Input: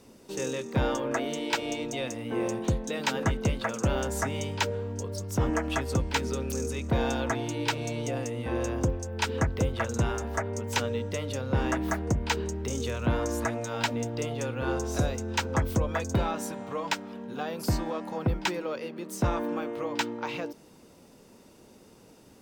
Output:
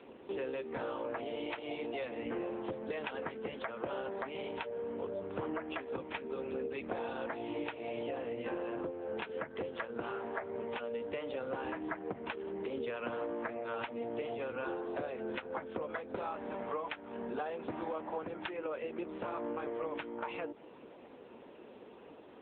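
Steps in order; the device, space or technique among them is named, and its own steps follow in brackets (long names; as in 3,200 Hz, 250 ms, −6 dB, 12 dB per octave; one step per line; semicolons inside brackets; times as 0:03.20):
voicemail (band-pass filter 340–3,000 Hz; downward compressor 8 to 1, threshold −41 dBFS, peak gain reduction 17 dB; level +7 dB; AMR narrowband 6.7 kbit/s 8,000 Hz)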